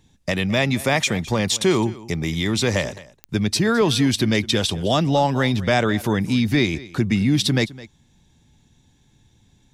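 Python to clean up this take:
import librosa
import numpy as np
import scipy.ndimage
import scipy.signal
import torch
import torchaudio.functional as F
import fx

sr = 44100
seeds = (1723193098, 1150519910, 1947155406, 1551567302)

y = fx.fix_declick_ar(x, sr, threshold=10.0)
y = fx.fix_echo_inverse(y, sr, delay_ms=211, level_db=-19.0)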